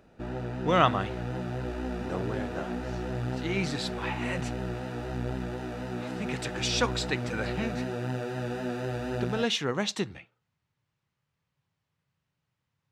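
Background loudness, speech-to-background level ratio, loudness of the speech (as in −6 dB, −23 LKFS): −34.5 LKFS, 3.5 dB, −31.0 LKFS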